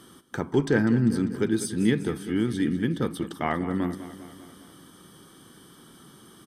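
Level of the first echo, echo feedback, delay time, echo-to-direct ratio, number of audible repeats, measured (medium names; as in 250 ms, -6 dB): -13.5 dB, 60%, 198 ms, -11.5 dB, 5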